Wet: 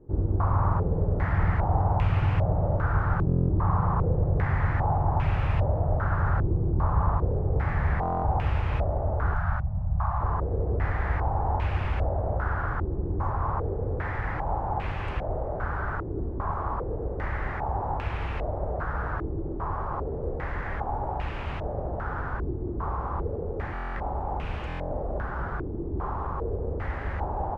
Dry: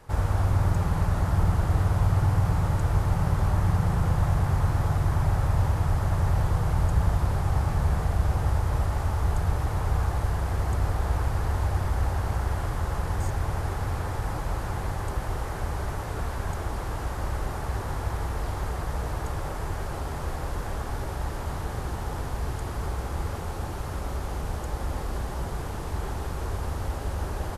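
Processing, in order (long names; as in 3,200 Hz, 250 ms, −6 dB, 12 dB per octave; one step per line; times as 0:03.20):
0:09.34–0:10.21: Chebyshev band-stop filter 200–630 Hz, order 3
buffer that repeats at 0:03.27/0:08.01/0:23.73/0:24.68, samples 1,024, times 9
low-pass on a step sequencer 2.5 Hz 350–2,600 Hz
level −1.5 dB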